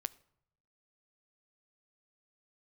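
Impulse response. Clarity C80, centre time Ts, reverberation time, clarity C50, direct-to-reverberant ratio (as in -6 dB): 24.0 dB, 2 ms, 0.75 s, 21.5 dB, 16.5 dB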